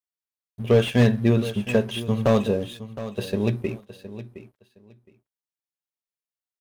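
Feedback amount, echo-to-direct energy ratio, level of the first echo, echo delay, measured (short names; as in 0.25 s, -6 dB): 18%, -14.0 dB, -14.0 dB, 0.715 s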